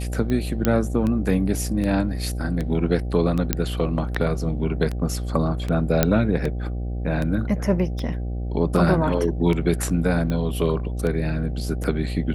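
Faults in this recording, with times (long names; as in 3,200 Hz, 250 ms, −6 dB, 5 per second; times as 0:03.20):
mains buzz 60 Hz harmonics 13 −27 dBFS
scratch tick 78 rpm −15 dBFS
0:00.65: click −6 dBFS
0:03.53: click −4 dBFS
0:06.03: click −2 dBFS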